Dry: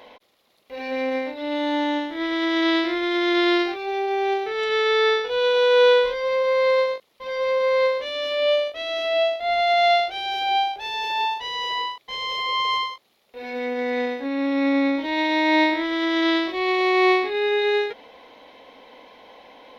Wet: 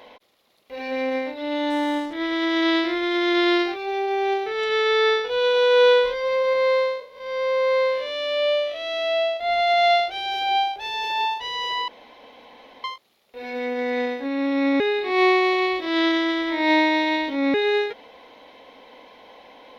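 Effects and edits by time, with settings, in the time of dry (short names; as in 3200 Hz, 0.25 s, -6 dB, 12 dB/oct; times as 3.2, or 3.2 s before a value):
1.7–2.13 backlash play -33 dBFS
6.53–9.37 time blur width 0.189 s
11.88–12.84 room tone
14.8–17.54 reverse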